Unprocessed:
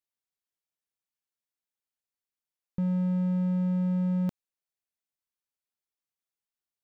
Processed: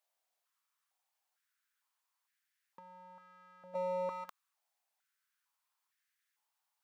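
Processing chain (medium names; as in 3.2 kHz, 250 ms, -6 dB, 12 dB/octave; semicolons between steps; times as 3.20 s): 3.74–4.25 s: hard clipper -34.5 dBFS, distortion -8 dB; compressor with a negative ratio -33 dBFS, ratio -0.5; step-sequenced high-pass 2.2 Hz 670–1700 Hz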